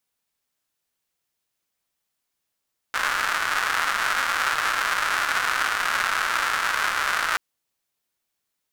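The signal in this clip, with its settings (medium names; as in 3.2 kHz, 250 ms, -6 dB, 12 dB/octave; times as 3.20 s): rain from filtered ticks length 4.43 s, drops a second 300, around 1.4 kHz, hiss -24 dB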